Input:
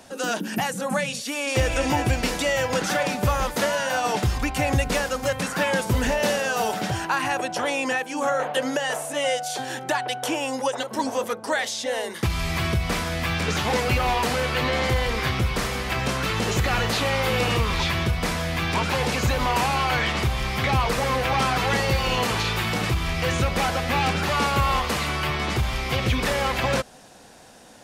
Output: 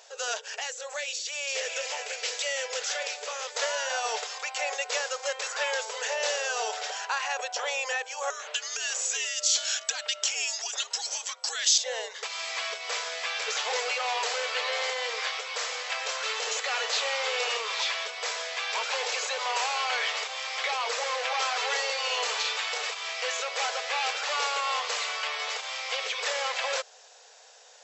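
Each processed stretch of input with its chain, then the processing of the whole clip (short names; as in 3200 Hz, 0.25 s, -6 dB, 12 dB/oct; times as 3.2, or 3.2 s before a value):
0.59–3.55 bell 970 Hz -8 dB 1.3 oct + Doppler distortion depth 0.26 ms
8.3–11.78 compressor 10:1, threshold -27 dBFS + frequency shift -140 Hz + weighting filter ITU-R 468
whole clip: FFT band-pass 410–7900 Hz; high shelf 2700 Hz +10.5 dB; gain -8 dB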